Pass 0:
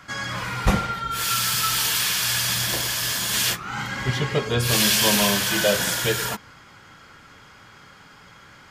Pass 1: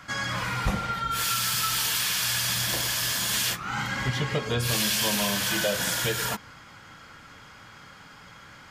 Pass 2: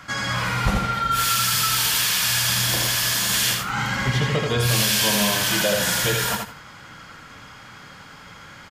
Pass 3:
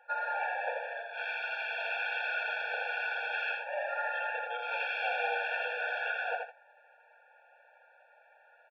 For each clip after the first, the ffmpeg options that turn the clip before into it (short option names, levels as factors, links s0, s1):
-af "equalizer=f=390:w=7.8:g=-7,acompressor=threshold=0.0631:ratio=3"
-af "aecho=1:1:82|164|246:0.631|0.126|0.0252,volume=1.58"
-af "agate=range=0.355:threshold=0.02:ratio=16:detection=peak,highpass=f=370:t=q:w=0.5412,highpass=f=370:t=q:w=1.307,lowpass=f=2900:t=q:w=0.5176,lowpass=f=2900:t=q:w=0.7071,lowpass=f=2900:t=q:w=1.932,afreqshift=-230,afftfilt=real='re*eq(mod(floor(b*sr/1024/460),2),1)':imag='im*eq(mod(floor(b*sr/1024/460),2),1)':win_size=1024:overlap=0.75,volume=0.668"